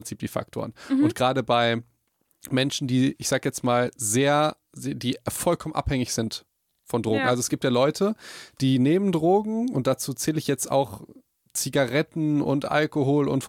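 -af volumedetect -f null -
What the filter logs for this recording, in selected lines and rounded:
mean_volume: -24.5 dB
max_volume: -8.0 dB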